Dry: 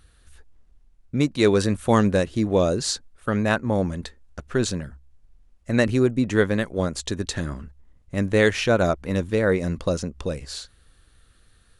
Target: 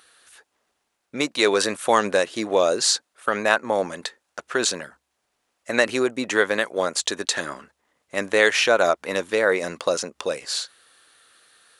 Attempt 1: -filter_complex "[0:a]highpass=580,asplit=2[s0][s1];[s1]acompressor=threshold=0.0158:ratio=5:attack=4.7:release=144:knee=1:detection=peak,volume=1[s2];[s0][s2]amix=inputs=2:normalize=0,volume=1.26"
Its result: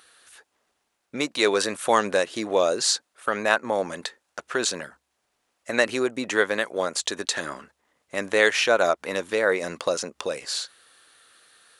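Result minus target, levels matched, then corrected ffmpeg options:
compression: peak gain reduction +8.5 dB
-filter_complex "[0:a]highpass=580,asplit=2[s0][s1];[s1]acompressor=threshold=0.0531:ratio=5:attack=4.7:release=144:knee=1:detection=peak,volume=1[s2];[s0][s2]amix=inputs=2:normalize=0,volume=1.26"

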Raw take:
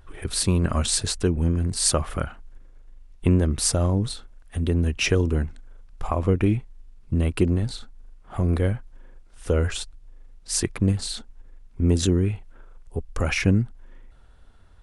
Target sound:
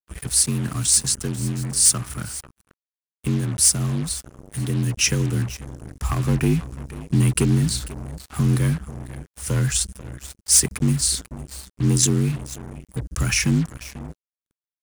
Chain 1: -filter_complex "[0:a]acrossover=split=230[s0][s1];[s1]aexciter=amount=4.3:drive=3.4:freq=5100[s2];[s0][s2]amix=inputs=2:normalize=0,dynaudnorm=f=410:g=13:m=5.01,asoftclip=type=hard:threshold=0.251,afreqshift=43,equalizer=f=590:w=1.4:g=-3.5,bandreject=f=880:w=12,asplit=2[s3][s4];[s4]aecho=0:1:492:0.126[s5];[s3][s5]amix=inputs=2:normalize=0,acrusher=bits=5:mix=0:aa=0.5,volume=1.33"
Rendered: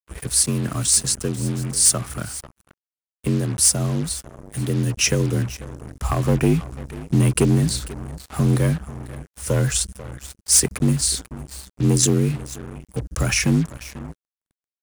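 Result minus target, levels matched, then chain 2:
500 Hz band +5.5 dB
-filter_complex "[0:a]acrossover=split=230[s0][s1];[s1]aexciter=amount=4.3:drive=3.4:freq=5100[s2];[s0][s2]amix=inputs=2:normalize=0,dynaudnorm=f=410:g=13:m=5.01,asoftclip=type=hard:threshold=0.251,afreqshift=43,equalizer=f=590:w=1.4:g=-15,bandreject=f=880:w=12,asplit=2[s3][s4];[s4]aecho=0:1:492:0.126[s5];[s3][s5]amix=inputs=2:normalize=0,acrusher=bits=5:mix=0:aa=0.5,volume=1.33"

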